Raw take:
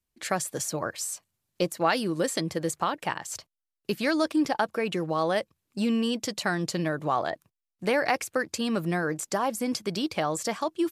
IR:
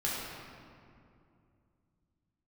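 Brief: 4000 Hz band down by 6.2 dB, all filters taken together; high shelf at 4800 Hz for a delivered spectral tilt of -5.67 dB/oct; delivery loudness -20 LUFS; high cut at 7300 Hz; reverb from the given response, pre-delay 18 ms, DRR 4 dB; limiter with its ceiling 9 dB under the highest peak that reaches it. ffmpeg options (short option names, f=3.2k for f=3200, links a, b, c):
-filter_complex "[0:a]lowpass=7.3k,equalizer=f=4k:t=o:g=-4.5,highshelf=f=4.8k:g=-7,alimiter=limit=-20.5dB:level=0:latency=1,asplit=2[a][b];[1:a]atrim=start_sample=2205,adelay=18[c];[b][c]afir=irnorm=-1:irlink=0,volume=-11dB[d];[a][d]amix=inputs=2:normalize=0,volume=10dB"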